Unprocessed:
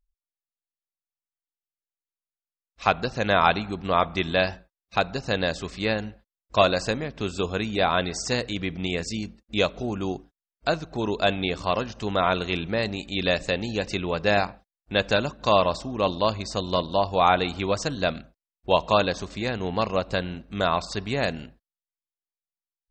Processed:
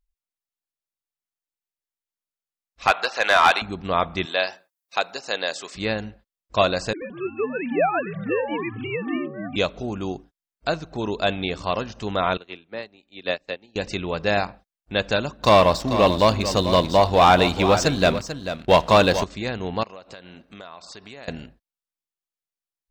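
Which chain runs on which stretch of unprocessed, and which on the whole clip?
2.87–3.62 HPF 660 Hz + high shelf 6000 Hz -5 dB + overdrive pedal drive 17 dB, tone 5700 Hz, clips at -5 dBFS
4.25–5.75 HPF 480 Hz + high shelf 7100 Hz +12 dB
6.93–9.56 sine-wave speech + echoes that change speed 86 ms, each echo -7 st, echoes 3, each echo -6 dB
12.37–13.76 three-band isolator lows -12 dB, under 230 Hz, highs -15 dB, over 5200 Hz + upward expander 2.5:1, over -36 dBFS
15.43–19.24 sample leveller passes 2 + echo 0.441 s -10.5 dB
19.83–21.28 HPF 390 Hz 6 dB/oct + compressor 5:1, threshold -38 dBFS
whole clip: dry

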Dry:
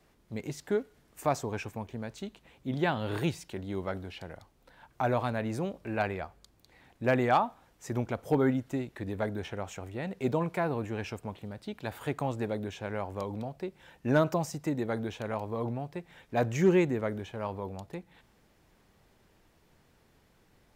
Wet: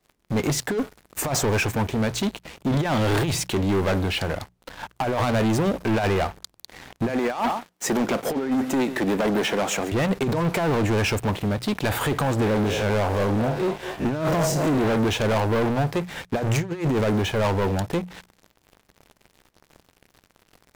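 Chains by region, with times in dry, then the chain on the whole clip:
7.09–9.92 HPF 180 Hz 24 dB/oct + echo 0.139 s -21 dB
12.41–14.96 time blur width 84 ms + delay with a stepping band-pass 0.229 s, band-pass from 550 Hz, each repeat 0.7 oct, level -10.5 dB
whole clip: negative-ratio compressor -32 dBFS, ratio -0.5; sample leveller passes 5; notches 60/120/180 Hz

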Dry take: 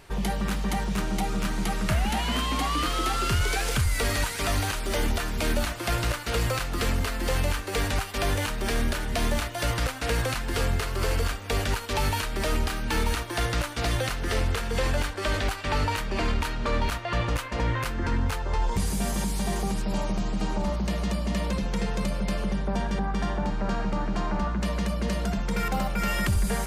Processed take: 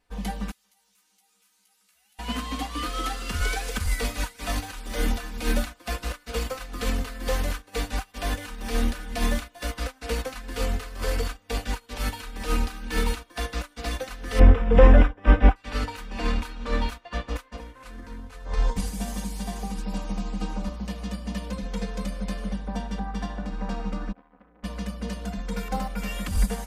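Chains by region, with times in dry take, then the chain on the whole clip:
0.51–2.19 differentiator + compressor 2.5:1, threshold -44 dBFS + doubler 15 ms -5 dB
14.39–15.56 polynomial smoothing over 25 samples + tilt shelf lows +6 dB, about 1200 Hz
17.57–18.45 CVSD 64 kbps + compressor 5:1, threshold -26 dBFS
24.12–24.64 HPF 63 Hz + air absorption 420 m + core saturation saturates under 980 Hz
whole clip: comb 4 ms, depth 95%; upward expander 2.5:1, over -33 dBFS; gain +6.5 dB

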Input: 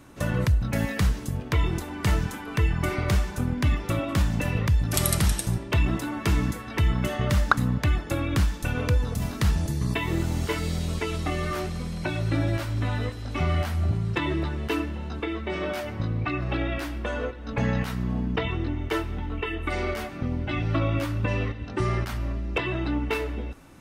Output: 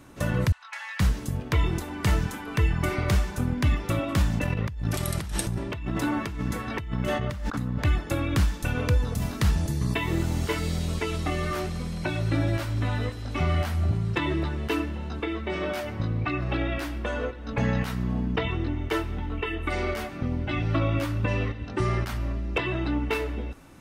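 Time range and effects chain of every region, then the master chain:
0.52–1 elliptic high-pass 910 Hz, stop band 60 dB + air absorption 83 m
4.39–7.85 high shelf 4600 Hz -6 dB + negative-ratio compressor -29 dBFS
whole clip: dry

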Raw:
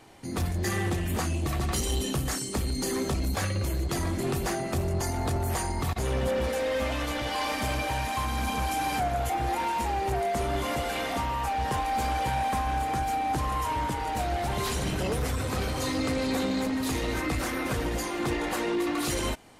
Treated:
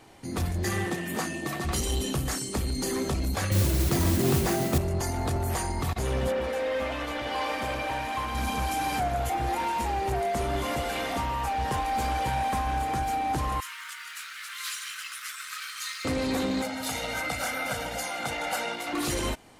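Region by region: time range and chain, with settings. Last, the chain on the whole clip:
0.84–1.64 HPF 150 Hz 24 dB/oct + whine 1800 Hz -39 dBFS
3.51–4.78 HPF 75 Hz + low shelf 400 Hz +8 dB + modulation noise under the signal 11 dB
6.32–8.35 tone controls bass -7 dB, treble -8 dB + echo 0.934 s -11.5 dB
13.6–16.05 steep high-pass 1200 Hz 72 dB/oct + modulation noise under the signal 23 dB + lo-fi delay 0.184 s, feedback 55%, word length 9-bit, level -12 dB
16.62–18.93 HPF 450 Hz 6 dB/oct + comb 1.4 ms, depth 85%
whole clip: dry

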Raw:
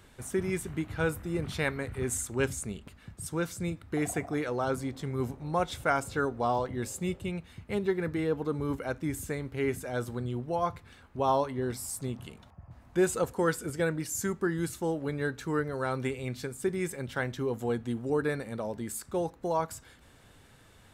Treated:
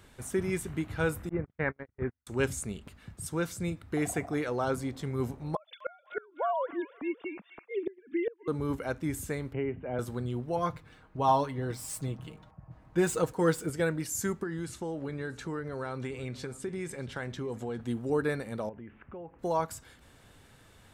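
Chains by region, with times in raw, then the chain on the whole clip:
1.29–2.27 Chebyshev low-pass 1900 Hz, order 3 + gate -33 dBFS, range -46 dB
5.55–8.48 sine-wave speech + thin delay 0.254 s, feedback 36%, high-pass 2000 Hz, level -8.5 dB + flipped gate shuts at -21 dBFS, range -27 dB
9.53–9.99 rippled Chebyshev low-pass 3000 Hz, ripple 3 dB + bell 1800 Hz -8.5 dB 2.5 oct + three-band squash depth 100%
10.56–13.69 median filter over 3 samples + comb 6.4 ms, depth 58% + mismatched tape noise reduction decoder only
14.43–17.81 Bessel low-pass 8200 Hz, order 4 + compressor 4:1, threshold -32 dBFS + echo 0.631 s -20.5 dB
18.69–19.39 steep low-pass 2900 Hz 72 dB/oct + compressor 3:1, threshold -44 dBFS
whole clip: dry

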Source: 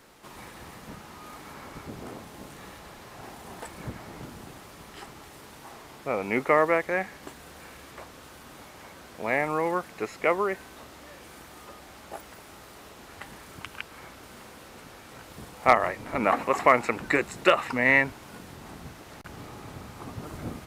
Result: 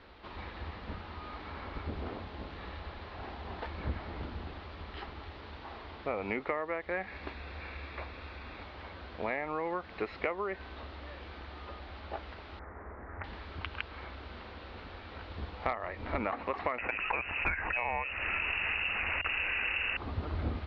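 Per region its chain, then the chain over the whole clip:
7.07–8.63 bell 2500 Hz +7.5 dB 0.67 oct + notch 3000 Hz, Q 5.7
12.59–13.24 steep low-pass 2000 Hz 72 dB/oct + doubler 33 ms -5 dB + Doppler distortion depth 0.26 ms
16.78–19.97 inverted band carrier 2800 Hz + fast leveller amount 50%
whole clip: steep low-pass 4400 Hz 48 dB/oct; compressor 16:1, threshold -29 dBFS; resonant low shelf 100 Hz +7 dB, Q 3

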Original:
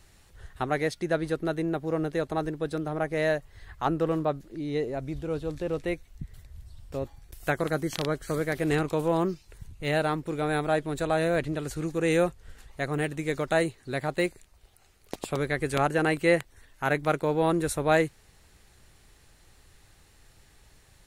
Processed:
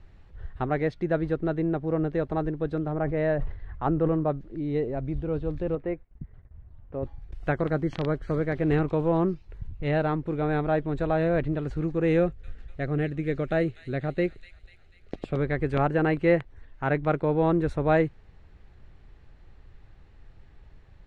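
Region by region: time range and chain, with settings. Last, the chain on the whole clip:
2.92–4.3 high shelf 4000 Hz -11.5 dB + sustainer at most 93 dB/s
5.75–7.03 LPF 1700 Hz + gate -49 dBFS, range -12 dB + low shelf 140 Hz -11.5 dB
12.19–15.37 bell 950 Hz -12 dB 0.46 oct + thin delay 0.246 s, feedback 56%, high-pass 3700 Hz, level -6 dB
whole clip: LPF 3100 Hz 12 dB/oct; tilt -2 dB/oct; gain -1 dB

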